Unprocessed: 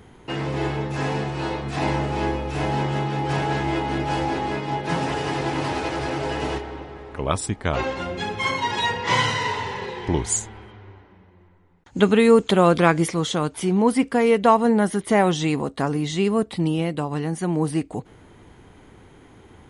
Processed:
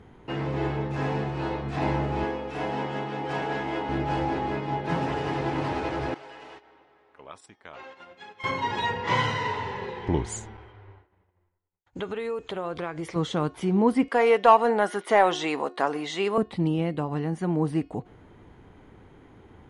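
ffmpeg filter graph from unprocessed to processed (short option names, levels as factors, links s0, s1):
-filter_complex "[0:a]asettb=1/sr,asplit=3[s0][s1][s2];[s0]atrim=end=2.244[s3];[s1]atrim=start=2.24:end=3.89,asetpts=PTS-STARTPTS,afade=t=in:d=0.004:c=qsin,afade=t=out:st=1.646:d=0.004:c=qsin,highpass=f=300:p=1,aecho=1:1:4.2:0.33,atrim=end_sample=72765[s4];[s2]atrim=start=3.886[s5];[s3][s4]acrossfade=d=0.004:c1=hsin:c2=qsin[s6];[s6][s5]acrossfade=d=0.004:c1=qsin:c2=hsin,asettb=1/sr,asplit=3[s7][s8][s9];[s7]atrim=end=6.144[s10];[s8]atrim=start=6.14:end=8.44,asetpts=PTS-STARTPTS,afade=t=in:d=0.004:c=qsin,afade=t=out:st=2.296:d=0.004:c=qsin,agate=range=0.282:threshold=0.0355:ratio=16:release=100:detection=peak,acompressor=threshold=0.0141:ratio=2:attack=3.2:release=140:knee=1:detection=peak,highpass=f=1200:p=1[s11];[s9]atrim=start=8.436[s12];[s10][s11]acrossfade=d=0.004:c1=hsin:c2=qsin[s13];[s13][s12]acrossfade=d=0.004:c1=qsin:c2=hsin,asettb=1/sr,asplit=3[s14][s15][s16];[s14]atrim=end=10.574[s17];[s15]atrim=start=10.57:end=13.16,asetpts=PTS-STARTPTS,afade=t=in:d=0.004:c=qsin,afade=t=out:st=2.586:d=0.004:c=qsin,agate=range=0.0224:threshold=0.00631:ratio=3:release=100:detection=peak,equalizer=f=210:t=o:w=0.78:g=-13,acompressor=threshold=0.0501:ratio=4:attack=3.2:release=140:knee=1:detection=peak[s18];[s16]atrim=start=13.156[s19];[s17][s18]acrossfade=d=0.004:c1=hsin:c2=qsin[s20];[s20][s19]acrossfade=d=0.004:c1=qsin:c2=hsin,asettb=1/sr,asplit=3[s21][s22][s23];[s21]atrim=end=14.084[s24];[s22]atrim=start=14.08:end=16.38,asetpts=PTS-STARTPTS,afade=t=in:d=0.004:c=qsin,afade=t=out:st=2.296:d=0.004:c=qsin,highpass=550,acontrast=52[s25];[s23]atrim=start=16.376[s26];[s24][s25]acrossfade=d=0.004:c1=hsin:c2=qsin[s27];[s27][s26]acrossfade=d=0.004:c1=qsin:c2=hsin,aemphasis=mode=reproduction:type=75kf,bandreject=f=360.9:t=h:w=4,bandreject=f=721.8:t=h:w=4,bandreject=f=1082.7:t=h:w=4,bandreject=f=1443.6:t=h:w=4,bandreject=f=1804.5:t=h:w=4,bandreject=f=2165.4:t=h:w=4,bandreject=f=2526.3:t=h:w=4,bandreject=f=2887.2:t=h:w=4,bandreject=f=3248.1:t=h:w=4,bandreject=f=3609:t=h:w=4,bandreject=f=3969.9:t=h:w=4,bandreject=f=4330.8:t=h:w=4,bandreject=f=4691.7:t=h:w=4,bandreject=f=5052.6:t=h:w=4,bandreject=f=5413.5:t=h:w=4,bandreject=f=5774.4:t=h:w=4,volume=0.75"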